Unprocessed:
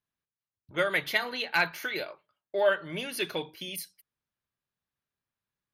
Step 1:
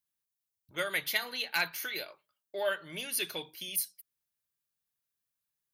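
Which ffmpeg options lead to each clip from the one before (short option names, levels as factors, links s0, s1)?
-af "crystalizer=i=4:c=0,volume=0.376"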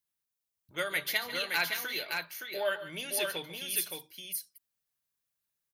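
-af "aecho=1:1:144|567:0.211|0.596"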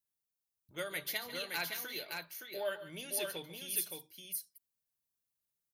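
-af "equalizer=f=1800:w=0.46:g=-6.5,volume=0.75"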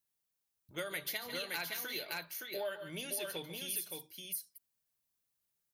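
-af "acompressor=threshold=0.0112:ratio=5,volume=1.5"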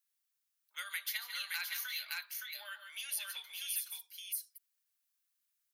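-af "highpass=f=1200:w=0.5412,highpass=f=1200:w=1.3066,volume=1.12"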